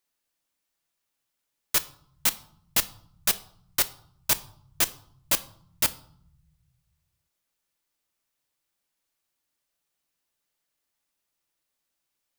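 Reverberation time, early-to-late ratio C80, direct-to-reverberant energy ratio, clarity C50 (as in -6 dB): 0.60 s, 21.5 dB, 10.5 dB, 18.5 dB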